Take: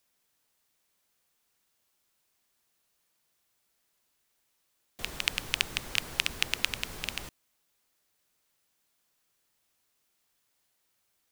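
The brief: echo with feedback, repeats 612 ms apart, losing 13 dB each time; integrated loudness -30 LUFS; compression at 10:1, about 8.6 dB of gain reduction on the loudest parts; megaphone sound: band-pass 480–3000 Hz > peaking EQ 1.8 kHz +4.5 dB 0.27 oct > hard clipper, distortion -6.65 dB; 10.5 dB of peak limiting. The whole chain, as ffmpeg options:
-af "acompressor=threshold=0.0282:ratio=10,alimiter=limit=0.112:level=0:latency=1,highpass=480,lowpass=3000,equalizer=f=1800:t=o:w=0.27:g=4.5,aecho=1:1:612|1224|1836:0.224|0.0493|0.0108,asoftclip=type=hard:threshold=0.0141,volume=11.9"

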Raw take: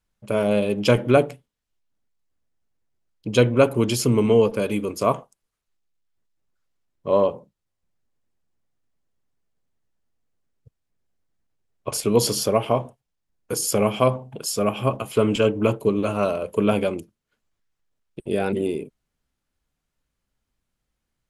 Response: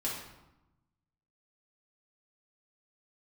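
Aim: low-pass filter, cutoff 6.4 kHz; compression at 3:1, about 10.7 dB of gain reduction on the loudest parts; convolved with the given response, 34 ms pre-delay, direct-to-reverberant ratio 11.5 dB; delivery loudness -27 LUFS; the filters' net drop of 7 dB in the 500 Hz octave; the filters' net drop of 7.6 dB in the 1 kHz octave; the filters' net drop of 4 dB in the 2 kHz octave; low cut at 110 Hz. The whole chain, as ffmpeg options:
-filter_complex "[0:a]highpass=110,lowpass=6400,equalizer=f=500:t=o:g=-6.5,equalizer=f=1000:t=o:g=-7,equalizer=f=2000:t=o:g=-3,acompressor=threshold=0.0282:ratio=3,asplit=2[s0][s1];[1:a]atrim=start_sample=2205,adelay=34[s2];[s1][s2]afir=irnorm=-1:irlink=0,volume=0.168[s3];[s0][s3]amix=inputs=2:normalize=0,volume=2.24"

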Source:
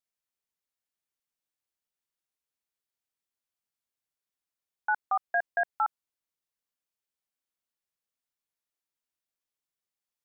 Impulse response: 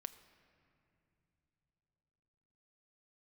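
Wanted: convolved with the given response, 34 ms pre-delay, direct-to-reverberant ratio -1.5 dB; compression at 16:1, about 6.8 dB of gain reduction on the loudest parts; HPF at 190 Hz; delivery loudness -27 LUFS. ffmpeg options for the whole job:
-filter_complex "[0:a]highpass=190,acompressor=threshold=0.0355:ratio=16,asplit=2[s0][s1];[1:a]atrim=start_sample=2205,adelay=34[s2];[s1][s2]afir=irnorm=-1:irlink=0,volume=1.88[s3];[s0][s3]amix=inputs=2:normalize=0,volume=2"

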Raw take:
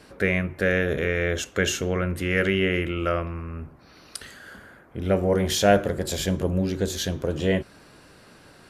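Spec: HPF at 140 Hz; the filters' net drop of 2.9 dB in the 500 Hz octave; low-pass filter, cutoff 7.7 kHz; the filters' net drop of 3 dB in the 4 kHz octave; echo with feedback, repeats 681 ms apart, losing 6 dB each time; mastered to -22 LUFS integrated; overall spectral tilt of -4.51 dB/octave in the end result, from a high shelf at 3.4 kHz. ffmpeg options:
-af "highpass=140,lowpass=7700,equalizer=f=500:t=o:g=-3.5,highshelf=f=3400:g=3.5,equalizer=f=4000:t=o:g=-6.5,aecho=1:1:681|1362|2043|2724|3405|4086:0.501|0.251|0.125|0.0626|0.0313|0.0157,volume=1.68"

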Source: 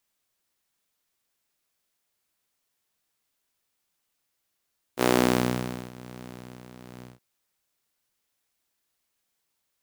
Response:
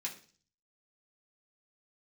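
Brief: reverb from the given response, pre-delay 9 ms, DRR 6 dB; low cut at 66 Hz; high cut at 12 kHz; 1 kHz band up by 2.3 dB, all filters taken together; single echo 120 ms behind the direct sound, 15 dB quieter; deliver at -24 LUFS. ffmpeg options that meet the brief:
-filter_complex "[0:a]highpass=66,lowpass=12000,equalizer=f=1000:t=o:g=3,aecho=1:1:120:0.178,asplit=2[s0][s1];[1:a]atrim=start_sample=2205,adelay=9[s2];[s1][s2]afir=irnorm=-1:irlink=0,volume=0.501[s3];[s0][s3]amix=inputs=2:normalize=0,volume=1.12"

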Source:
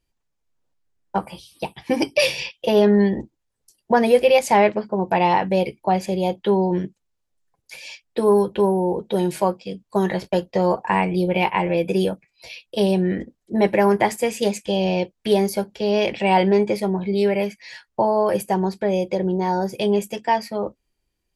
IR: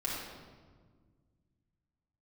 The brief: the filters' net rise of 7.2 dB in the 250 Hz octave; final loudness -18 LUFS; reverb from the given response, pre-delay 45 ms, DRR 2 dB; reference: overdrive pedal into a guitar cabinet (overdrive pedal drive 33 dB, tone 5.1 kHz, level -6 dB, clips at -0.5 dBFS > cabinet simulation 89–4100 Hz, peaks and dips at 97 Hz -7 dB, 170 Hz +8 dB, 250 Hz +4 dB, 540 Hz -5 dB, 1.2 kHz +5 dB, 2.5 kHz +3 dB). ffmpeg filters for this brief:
-filter_complex "[0:a]equalizer=f=250:t=o:g=5,asplit=2[s0][s1];[1:a]atrim=start_sample=2205,adelay=45[s2];[s1][s2]afir=irnorm=-1:irlink=0,volume=0.447[s3];[s0][s3]amix=inputs=2:normalize=0,asplit=2[s4][s5];[s5]highpass=f=720:p=1,volume=44.7,asoftclip=type=tanh:threshold=0.944[s6];[s4][s6]amix=inputs=2:normalize=0,lowpass=f=5100:p=1,volume=0.501,highpass=89,equalizer=f=97:t=q:w=4:g=-7,equalizer=f=170:t=q:w=4:g=8,equalizer=f=250:t=q:w=4:g=4,equalizer=f=540:t=q:w=4:g=-5,equalizer=f=1200:t=q:w=4:g=5,equalizer=f=2500:t=q:w=4:g=3,lowpass=f=4100:w=0.5412,lowpass=f=4100:w=1.3066,volume=0.299"

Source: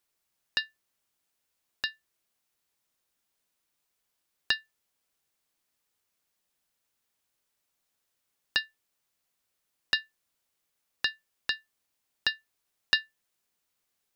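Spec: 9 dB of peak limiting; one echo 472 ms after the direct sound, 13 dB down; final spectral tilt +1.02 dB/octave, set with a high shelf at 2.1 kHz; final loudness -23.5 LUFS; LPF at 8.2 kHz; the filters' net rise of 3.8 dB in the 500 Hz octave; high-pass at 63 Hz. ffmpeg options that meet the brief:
-af "highpass=63,lowpass=8200,equalizer=f=500:t=o:g=4.5,highshelf=f=2100:g=4,alimiter=limit=0.224:level=0:latency=1,aecho=1:1:472:0.224,volume=4.22"

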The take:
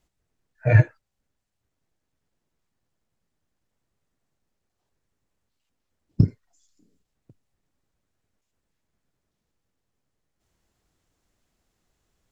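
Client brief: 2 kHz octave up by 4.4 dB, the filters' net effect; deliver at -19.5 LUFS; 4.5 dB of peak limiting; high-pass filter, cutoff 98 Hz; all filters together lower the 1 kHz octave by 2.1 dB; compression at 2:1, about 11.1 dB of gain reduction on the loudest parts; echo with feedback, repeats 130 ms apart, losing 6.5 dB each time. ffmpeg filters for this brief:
-af "highpass=98,equalizer=f=1000:t=o:g=-5.5,equalizer=f=2000:t=o:g=7,acompressor=threshold=0.0251:ratio=2,alimiter=limit=0.106:level=0:latency=1,aecho=1:1:130|260|390|520|650|780:0.473|0.222|0.105|0.0491|0.0231|0.0109,volume=6.31"

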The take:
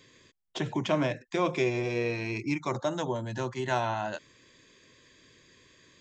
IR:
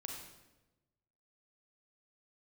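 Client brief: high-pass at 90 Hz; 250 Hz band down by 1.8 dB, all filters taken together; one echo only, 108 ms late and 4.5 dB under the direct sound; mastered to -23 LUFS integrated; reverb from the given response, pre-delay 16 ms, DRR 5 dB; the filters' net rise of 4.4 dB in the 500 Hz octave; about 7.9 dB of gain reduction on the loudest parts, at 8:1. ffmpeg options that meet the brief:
-filter_complex "[0:a]highpass=90,equalizer=f=250:t=o:g=-7.5,equalizer=f=500:t=o:g=8,acompressor=threshold=0.0447:ratio=8,aecho=1:1:108:0.596,asplit=2[s0][s1];[1:a]atrim=start_sample=2205,adelay=16[s2];[s1][s2]afir=irnorm=-1:irlink=0,volume=0.708[s3];[s0][s3]amix=inputs=2:normalize=0,volume=2.51"

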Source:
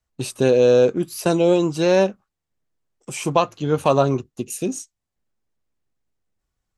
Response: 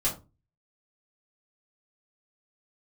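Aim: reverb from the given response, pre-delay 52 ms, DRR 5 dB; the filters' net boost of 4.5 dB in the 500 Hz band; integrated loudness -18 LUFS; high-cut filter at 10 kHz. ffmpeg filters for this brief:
-filter_complex "[0:a]lowpass=10000,equalizer=f=500:t=o:g=5,asplit=2[s0][s1];[1:a]atrim=start_sample=2205,adelay=52[s2];[s1][s2]afir=irnorm=-1:irlink=0,volume=0.237[s3];[s0][s3]amix=inputs=2:normalize=0,volume=0.631"

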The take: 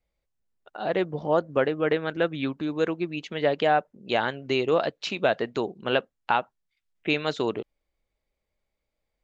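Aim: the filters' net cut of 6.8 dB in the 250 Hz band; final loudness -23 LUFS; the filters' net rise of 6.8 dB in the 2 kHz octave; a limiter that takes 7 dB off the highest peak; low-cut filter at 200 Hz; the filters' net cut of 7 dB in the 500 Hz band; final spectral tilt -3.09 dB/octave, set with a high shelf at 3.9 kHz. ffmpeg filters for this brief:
-af "highpass=200,equalizer=f=250:t=o:g=-4.5,equalizer=f=500:t=o:g=-8,equalizer=f=2000:t=o:g=8,highshelf=f=3900:g=7.5,volume=1.78,alimiter=limit=0.422:level=0:latency=1"

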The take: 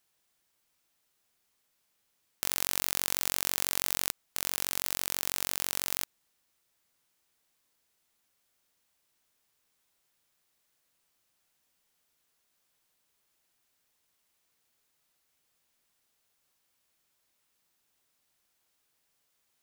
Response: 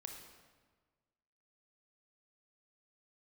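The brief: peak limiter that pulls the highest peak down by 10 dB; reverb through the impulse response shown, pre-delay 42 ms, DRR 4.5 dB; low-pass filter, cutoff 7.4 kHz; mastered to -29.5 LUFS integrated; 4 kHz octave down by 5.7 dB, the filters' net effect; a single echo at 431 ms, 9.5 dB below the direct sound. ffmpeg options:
-filter_complex "[0:a]lowpass=7400,equalizer=f=4000:t=o:g=-7,alimiter=limit=0.0841:level=0:latency=1,aecho=1:1:431:0.335,asplit=2[s0][s1];[1:a]atrim=start_sample=2205,adelay=42[s2];[s1][s2]afir=irnorm=-1:irlink=0,volume=0.944[s3];[s0][s3]amix=inputs=2:normalize=0,volume=6.31"

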